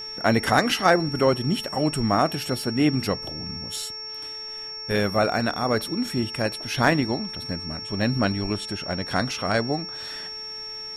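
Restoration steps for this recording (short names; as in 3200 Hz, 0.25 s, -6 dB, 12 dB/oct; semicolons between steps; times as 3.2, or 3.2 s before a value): clip repair -7 dBFS; de-click; de-hum 434.4 Hz, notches 6; notch 5500 Hz, Q 30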